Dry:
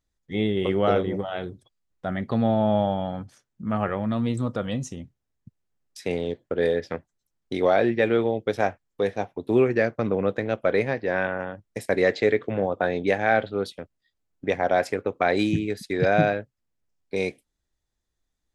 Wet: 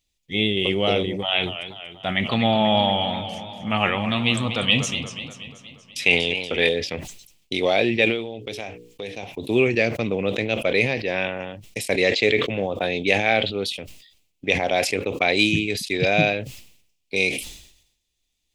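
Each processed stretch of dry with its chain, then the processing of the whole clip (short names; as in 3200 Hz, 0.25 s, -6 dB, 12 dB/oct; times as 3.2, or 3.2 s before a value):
1.22–6.69 band shelf 1600 Hz +8.5 dB 2.4 oct + warbling echo 0.24 s, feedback 57%, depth 143 cents, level -11 dB
8.05–9.23 notches 60/120/180/240/300/360/420/480 Hz + compressor 4:1, threshold -30 dBFS
whole clip: resonant high shelf 2000 Hz +9 dB, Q 3; sustainer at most 75 dB/s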